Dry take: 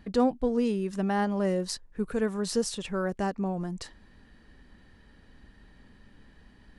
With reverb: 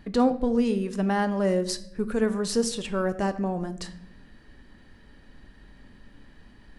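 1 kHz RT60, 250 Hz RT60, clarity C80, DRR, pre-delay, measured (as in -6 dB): 0.60 s, 1.3 s, 17.0 dB, 10.0 dB, 3 ms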